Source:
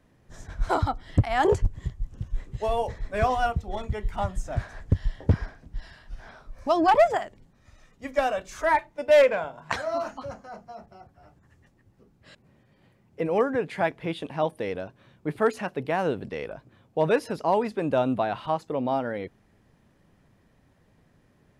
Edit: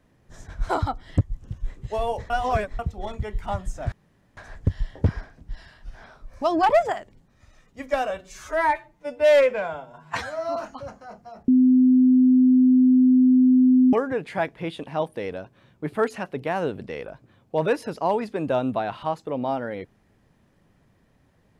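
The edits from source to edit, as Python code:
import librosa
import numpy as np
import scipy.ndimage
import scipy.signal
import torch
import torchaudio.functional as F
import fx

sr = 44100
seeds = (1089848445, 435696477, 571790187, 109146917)

y = fx.edit(x, sr, fx.cut(start_s=1.21, length_s=0.7),
    fx.reverse_span(start_s=3.0, length_s=0.49),
    fx.insert_room_tone(at_s=4.62, length_s=0.45),
    fx.stretch_span(start_s=8.35, length_s=1.64, factor=1.5),
    fx.bleep(start_s=10.91, length_s=2.45, hz=255.0, db=-12.5), tone=tone)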